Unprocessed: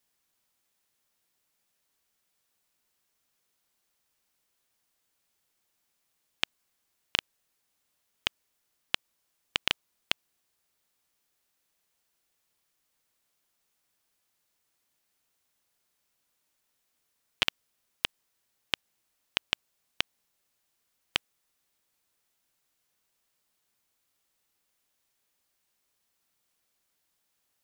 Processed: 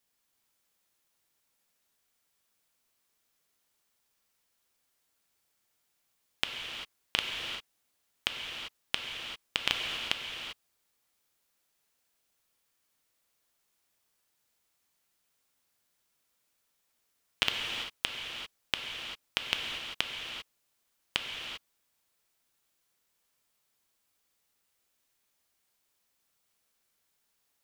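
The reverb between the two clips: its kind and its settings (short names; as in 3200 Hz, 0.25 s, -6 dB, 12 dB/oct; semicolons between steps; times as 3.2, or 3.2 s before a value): non-linear reverb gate 0.42 s flat, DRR 1 dB; gain -2 dB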